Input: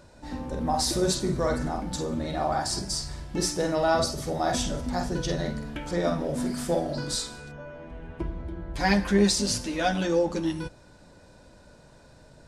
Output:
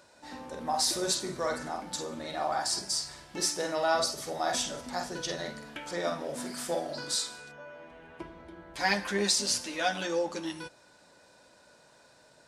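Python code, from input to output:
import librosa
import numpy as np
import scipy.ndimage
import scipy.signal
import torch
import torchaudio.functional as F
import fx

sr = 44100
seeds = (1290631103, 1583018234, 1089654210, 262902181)

y = fx.highpass(x, sr, hz=840.0, slope=6)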